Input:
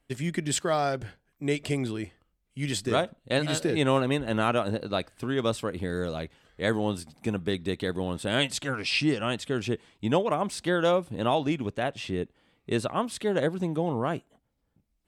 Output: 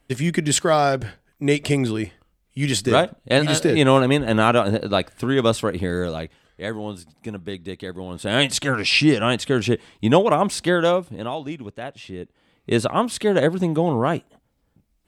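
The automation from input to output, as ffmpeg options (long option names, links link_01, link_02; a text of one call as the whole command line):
ffmpeg -i in.wav -af "volume=31.5dB,afade=type=out:start_time=5.68:duration=1.02:silence=0.281838,afade=type=in:start_time=8.09:duration=0.42:silence=0.266073,afade=type=out:start_time=10.51:duration=0.79:silence=0.237137,afade=type=in:start_time=12.2:duration=0.56:silence=0.266073" out.wav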